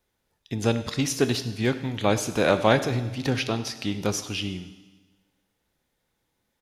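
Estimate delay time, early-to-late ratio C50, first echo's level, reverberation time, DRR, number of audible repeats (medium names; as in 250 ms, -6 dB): 97 ms, 12.0 dB, -19.0 dB, 1.3 s, 10.5 dB, 1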